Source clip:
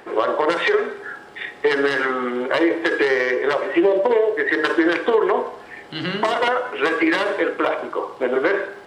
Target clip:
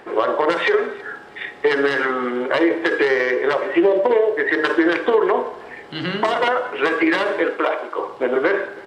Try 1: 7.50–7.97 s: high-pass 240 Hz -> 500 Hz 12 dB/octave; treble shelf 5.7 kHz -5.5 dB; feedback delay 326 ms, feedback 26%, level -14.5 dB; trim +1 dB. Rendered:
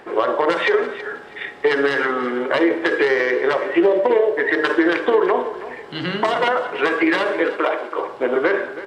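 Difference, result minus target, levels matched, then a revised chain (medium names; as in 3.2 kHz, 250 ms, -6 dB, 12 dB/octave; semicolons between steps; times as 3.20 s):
echo-to-direct +9 dB
7.50–7.97 s: high-pass 240 Hz -> 500 Hz 12 dB/octave; treble shelf 5.7 kHz -5.5 dB; feedback delay 326 ms, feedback 26%, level -23.5 dB; trim +1 dB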